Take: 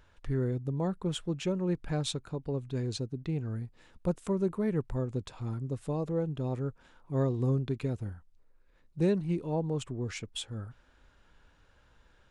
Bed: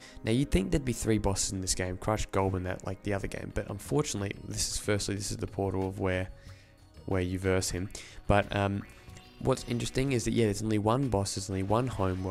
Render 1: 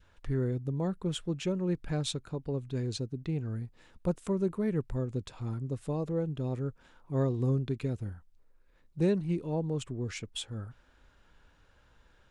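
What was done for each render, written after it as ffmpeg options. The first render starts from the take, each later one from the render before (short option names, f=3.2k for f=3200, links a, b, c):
-af "adynamicequalizer=threshold=0.00316:dfrequency=870:dqfactor=1.3:tfrequency=870:tqfactor=1.3:attack=5:release=100:ratio=0.375:range=2.5:mode=cutabove:tftype=bell"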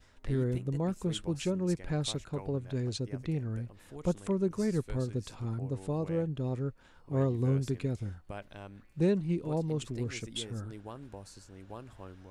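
-filter_complex "[1:a]volume=-18dB[a];[0:a][a]amix=inputs=2:normalize=0"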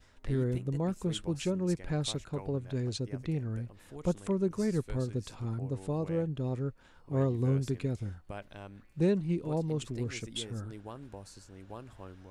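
-af anull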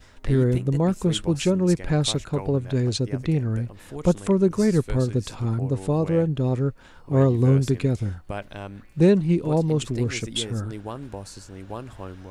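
-af "volume=10.5dB"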